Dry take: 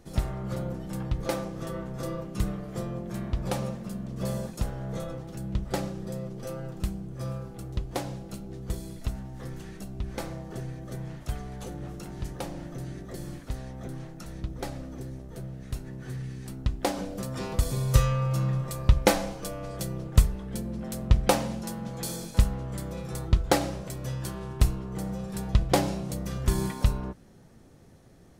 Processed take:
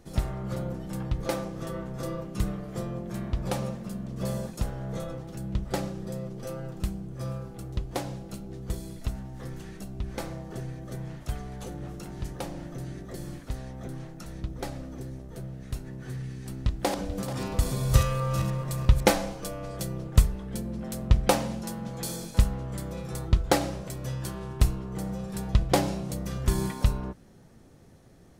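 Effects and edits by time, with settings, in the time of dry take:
16.24–19.11 s: backward echo that repeats 218 ms, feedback 46%, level -7 dB

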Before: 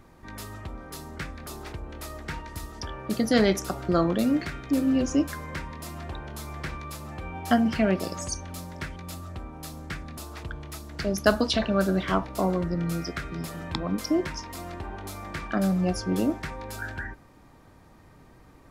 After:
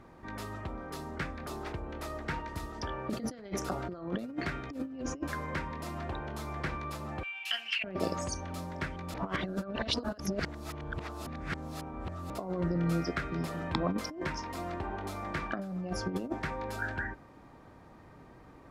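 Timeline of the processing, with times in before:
7.23–7.84 s: resonant high-pass 2.7 kHz, resonance Q 8.7
9.14–12.30 s: reverse
whole clip: high-pass 910 Hz 6 dB/octave; tilt EQ -4 dB/octave; compressor with a negative ratio -32 dBFS, ratio -0.5

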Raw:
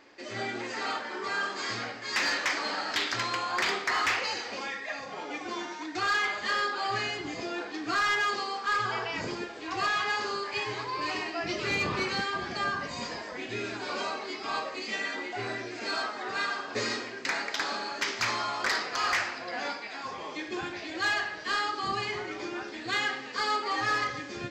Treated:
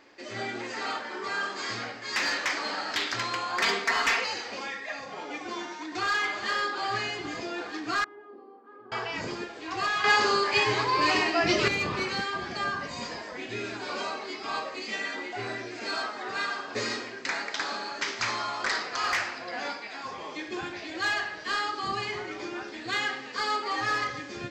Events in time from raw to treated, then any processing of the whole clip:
3.61–4.24 s: comb 4.4 ms, depth 96%
5.50–6.15 s: echo throw 410 ms, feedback 80%, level -11 dB
8.04–8.92 s: ladder band-pass 330 Hz, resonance 55%
10.04–11.68 s: gain +8.5 dB
17.16–19.04 s: Chebyshev low-pass 8.1 kHz, order 10

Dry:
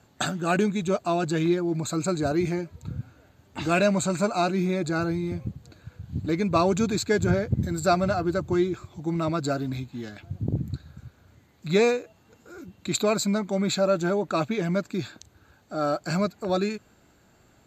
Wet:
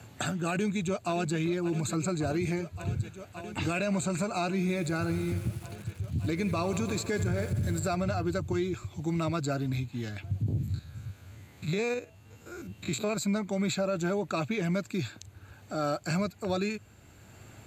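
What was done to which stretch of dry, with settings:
0.51–1.37 s: echo throw 570 ms, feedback 85%, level -16 dB
4.59–7.95 s: bit-crushed delay 84 ms, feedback 80%, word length 7-bit, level -15 dB
10.48–13.17 s: spectrogram pixelated in time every 50 ms
whole clip: fifteen-band graphic EQ 100 Hz +12 dB, 2.5 kHz +6 dB, 10 kHz +11 dB; peak limiter -16.5 dBFS; three bands compressed up and down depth 40%; trim -5 dB

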